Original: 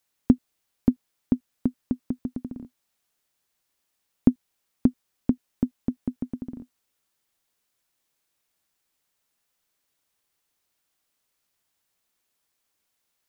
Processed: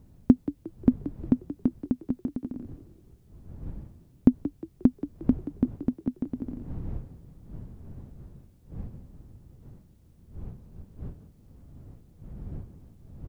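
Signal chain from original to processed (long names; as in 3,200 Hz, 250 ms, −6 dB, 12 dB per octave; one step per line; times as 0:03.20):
wind on the microphone 120 Hz −43 dBFS
echo with shifted repeats 178 ms, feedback 37%, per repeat +38 Hz, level −14 dB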